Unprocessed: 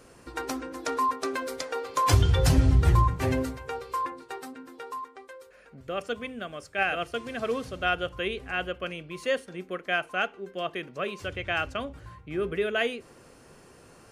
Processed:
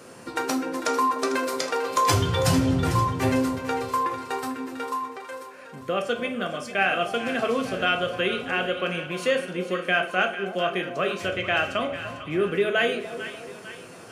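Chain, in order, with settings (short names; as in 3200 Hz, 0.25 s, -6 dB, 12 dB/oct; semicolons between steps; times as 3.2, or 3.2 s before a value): reverb RT60 0.40 s, pre-delay 5 ms, DRR 4.5 dB; in parallel at +2 dB: compressor, threshold -32 dBFS, peak gain reduction 18 dB; on the sum: HPF 110 Hz 24 dB/oct; split-band echo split 910 Hz, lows 0.297 s, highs 0.448 s, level -11.5 dB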